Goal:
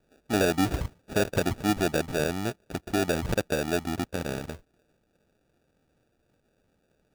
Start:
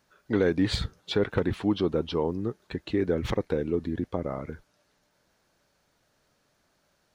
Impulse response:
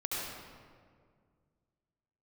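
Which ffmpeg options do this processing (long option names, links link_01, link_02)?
-filter_complex "[0:a]asettb=1/sr,asplit=3[link_01][link_02][link_03];[link_01]atrim=end=0.844[link_04];[link_02]atrim=start=0.84:end=1.58,asetpts=PTS-STARTPTS,afade=type=in:duration=0.004:curve=qsin,afade=type=out:start_time=0.736:duration=0.004:curve=qsin,equalizer=frequency=5600:width=0.72:gain=-10[link_05];[link_03]atrim=start=1.576[link_06];[link_04][link_05]acrossfade=duration=0.004:curve1=hsin:curve2=qsin[link_07];[link_07][link_06]acrossfade=duration=0.004:curve1=qsin:curve2=hsin,acrusher=samples=42:mix=1:aa=0.000001"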